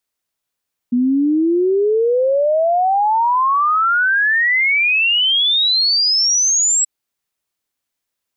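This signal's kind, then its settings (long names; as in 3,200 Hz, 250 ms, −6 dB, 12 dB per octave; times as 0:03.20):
exponential sine sweep 240 Hz → 7,800 Hz 5.93 s −12 dBFS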